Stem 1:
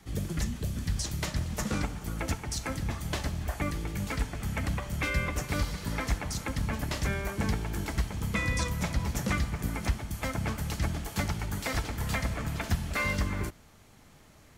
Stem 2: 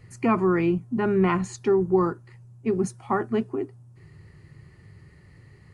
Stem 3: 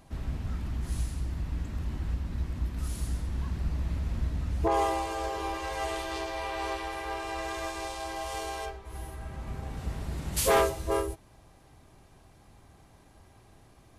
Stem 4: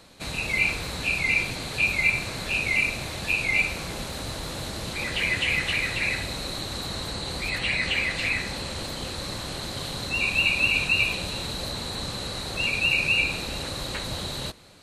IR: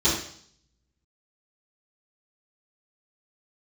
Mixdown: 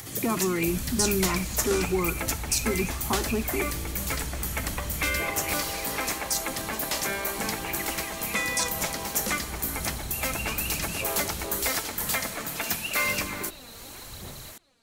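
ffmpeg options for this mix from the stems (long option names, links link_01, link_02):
-filter_complex "[0:a]highpass=290,aemphasis=mode=production:type=50fm,acompressor=mode=upward:threshold=-39dB:ratio=2.5,volume=3dB[link_01];[1:a]acompressor=threshold=-32dB:ratio=2,volume=2dB[link_02];[2:a]alimiter=level_in=6dB:limit=-24dB:level=0:latency=1,volume=-6dB,adelay=550,volume=1dB[link_03];[3:a]aphaser=in_gain=1:out_gain=1:delay=4.4:decay=0.73:speed=0.91:type=sinusoidal,volume=-17.5dB[link_04];[link_01][link_02][link_03][link_04]amix=inputs=4:normalize=0"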